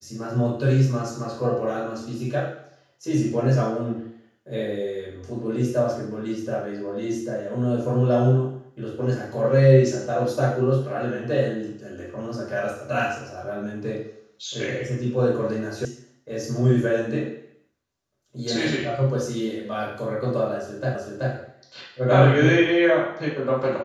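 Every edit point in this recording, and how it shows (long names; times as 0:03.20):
0:15.85: cut off before it has died away
0:20.95: the same again, the last 0.38 s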